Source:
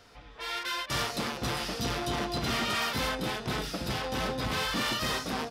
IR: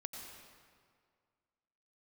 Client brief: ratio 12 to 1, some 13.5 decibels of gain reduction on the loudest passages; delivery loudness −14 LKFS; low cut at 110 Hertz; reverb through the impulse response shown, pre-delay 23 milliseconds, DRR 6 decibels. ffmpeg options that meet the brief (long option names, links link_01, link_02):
-filter_complex "[0:a]highpass=110,acompressor=threshold=-41dB:ratio=12,asplit=2[link_01][link_02];[1:a]atrim=start_sample=2205,adelay=23[link_03];[link_02][link_03]afir=irnorm=-1:irlink=0,volume=-4dB[link_04];[link_01][link_04]amix=inputs=2:normalize=0,volume=28.5dB"